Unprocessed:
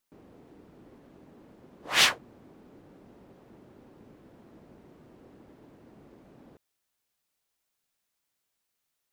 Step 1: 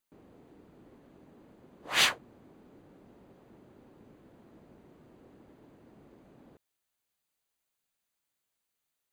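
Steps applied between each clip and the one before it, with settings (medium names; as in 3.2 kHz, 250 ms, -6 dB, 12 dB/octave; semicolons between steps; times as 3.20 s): band-stop 5.4 kHz, Q 8.2; trim -3 dB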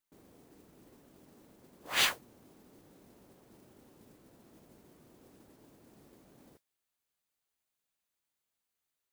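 modulation noise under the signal 10 dB; trim -3.5 dB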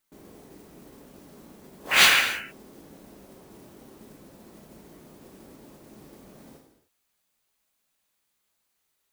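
painted sound noise, 1.91–2.21 s, 1.3–3 kHz -32 dBFS; gated-style reverb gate 330 ms falling, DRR 1.5 dB; trim +8.5 dB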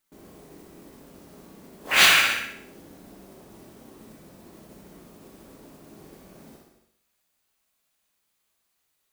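flutter echo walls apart 10.8 m, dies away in 0.61 s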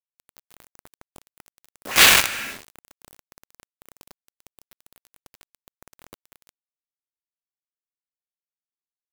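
companded quantiser 2-bit; trim -4 dB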